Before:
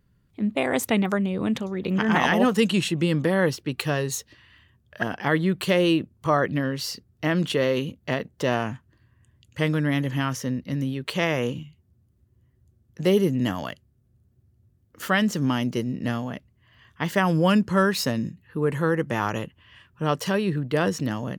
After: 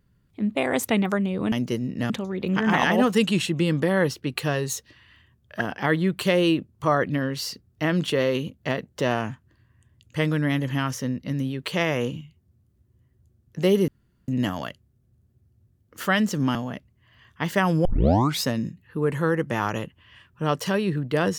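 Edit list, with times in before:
13.3 insert room tone 0.40 s
15.57–16.15 move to 1.52
17.45 tape start 0.58 s

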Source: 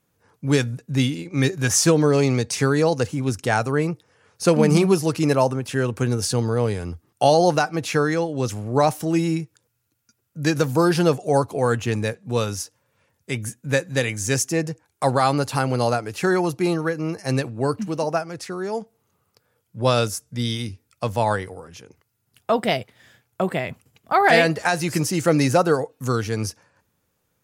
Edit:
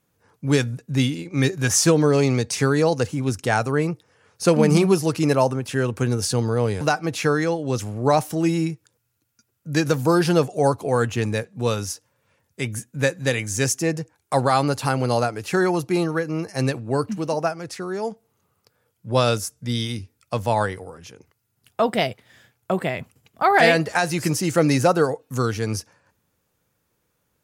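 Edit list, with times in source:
6.81–7.51 cut

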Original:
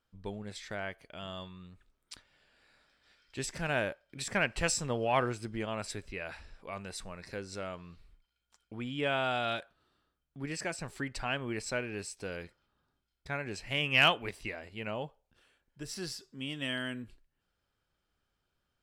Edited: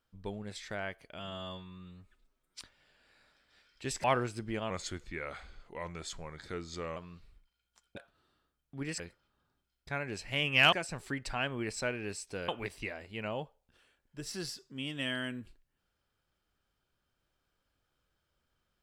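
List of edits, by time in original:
1.19–2.13 stretch 1.5×
3.57–5.1 cut
5.76–7.73 speed 87%
8.73–9.59 cut
12.38–14.11 move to 10.62

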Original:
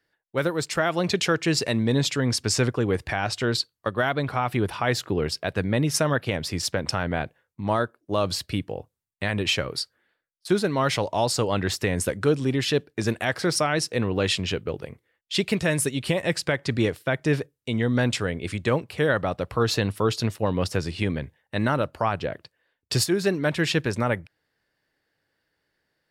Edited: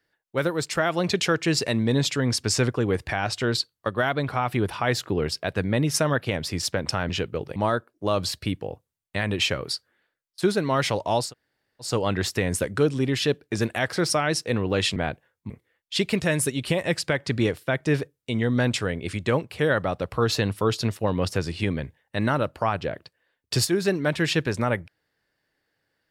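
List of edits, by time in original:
7.09–7.63 swap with 14.42–14.89
11.33 insert room tone 0.61 s, crossfade 0.16 s

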